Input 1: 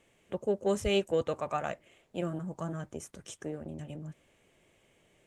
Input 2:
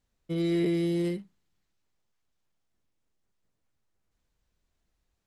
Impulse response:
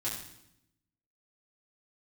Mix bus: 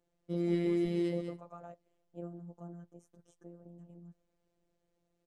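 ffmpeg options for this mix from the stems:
-filter_complex "[0:a]firequalizer=gain_entry='entry(590,0);entry(2200,-18);entry(5700,-12)':delay=0.05:min_phase=1,volume=-9dB[link_01];[1:a]lowpass=8800,volume=-4.5dB,asplit=2[link_02][link_03];[link_03]volume=-7.5dB,aecho=0:1:196:1[link_04];[link_01][link_02][link_04]amix=inputs=3:normalize=0,afftfilt=real='hypot(re,im)*cos(PI*b)':imag='0':win_size=1024:overlap=0.75"

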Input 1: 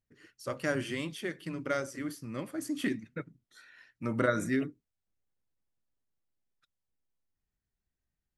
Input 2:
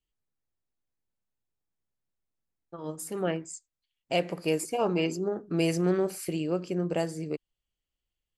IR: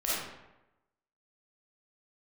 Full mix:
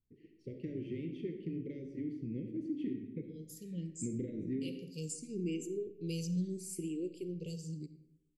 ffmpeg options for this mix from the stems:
-filter_complex "[0:a]acompressor=threshold=-37dB:ratio=4,lowpass=1100,asoftclip=type=tanh:threshold=-25dB,volume=0dB,asplit=3[link_01][link_02][link_03];[link_02]volume=-10.5dB[link_04];[1:a]equalizer=frequency=125:width_type=o:width=1:gain=5,equalizer=frequency=2000:width_type=o:width=1:gain=-11,equalizer=frequency=8000:width_type=o:width=1:gain=6,asplit=2[link_05][link_06];[link_06]afreqshift=0.76[link_07];[link_05][link_07]amix=inputs=2:normalize=1,adelay=500,volume=-8dB,asplit=2[link_08][link_09];[link_09]volume=-19dB[link_10];[link_03]apad=whole_len=391439[link_11];[link_08][link_11]sidechaincompress=threshold=-41dB:ratio=8:attack=16:release=937[link_12];[2:a]atrim=start_sample=2205[link_13];[link_04][link_10]amix=inputs=2:normalize=0[link_14];[link_14][link_13]afir=irnorm=-1:irlink=0[link_15];[link_01][link_12][link_15]amix=inputs=3:normalize=0,asuperstop=centerf=1000:order=12:qfactor=0.58"

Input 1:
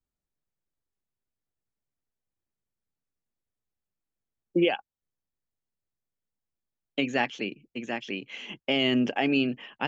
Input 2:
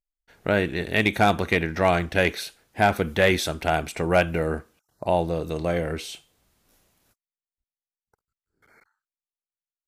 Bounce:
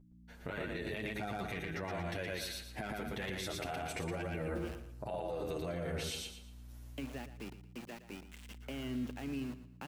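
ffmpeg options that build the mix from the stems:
ffmpeg -i stem1.wav -i stem2.wav -filter_complex "[0:a]highshelf=frequency=5600:gain=-10,acrossover=split=240[link_01][link_02];[link_02]acompressor=threshold=-40dB:ratio=4[link_03];[link_01][link_03]amix=inputs=2:normalize=0,aeval=exprs='val(0)*gte(abs(val(0)),0.0119)':channel_layout=same,volume=-8dB,asplit=2[link_04][link_05];[link_05]volume=-13.5dB[link_06];[1:a]acompressor=threshold=-29dB:ratio=12,aeval=exprs='val(0)+0.00224*(sin(2*PI*60*n/s)+sin(2*PI*2*60*n/s)/2+sin(2*PI*3*60*n/s)/3+sin(2*PI*4*60*n/s)/4+sin(2*PI*5*60*n/s)/5)':channel_layout=same,asplit=2[link_07][link_08];[link_08]adelay=8.2,afreqshift=-0.51[link_09];[link_07][link_09]amix=inputs=2:normalize=1,volume=0.5dB,asplit=2[link_10][link_11];[link_11]volume=-3.5dB[link_12];[link_06][link_12]amix=inputs=2:normalize=0,aecho=0:1:116|232|348|464|580:1|0.32|0.102|0.0328|0.0105[link_13];[link_04][link_10][link_13]amix=inputs=3:normalize=0,alimiter=level_in=6dB:limit=-24dB:level=0:latency=1:release=47,volume=-6dB" out.wav

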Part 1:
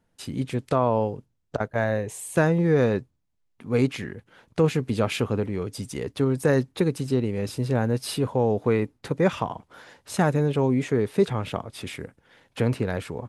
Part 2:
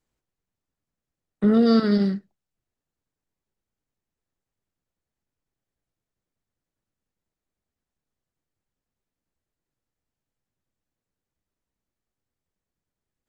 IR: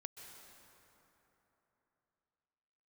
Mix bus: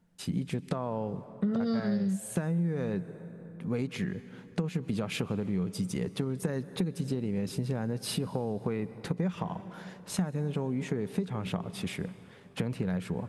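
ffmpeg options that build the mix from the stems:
-filter_complex "[0:a]acompressor=threshold=-24dB:ratio=2.5,volume=-4.5dB,asplit=2[link_01][link_02];[link_02]volume=-6dB[link_03];[1:a]volume=-5.5dB[link_04];[2:a]atrim=start_sample=2205[link_05];[link_03][link_05]afir=irnorm=-1:irlink=0[link_06];[link_01][link_04][link_06]amix=inputs=3:normalize=0,equalizer=frequency=180:width_type=o:width=0.34:gain=14.5,acompressor=threshold=-27dB:ratio=6"

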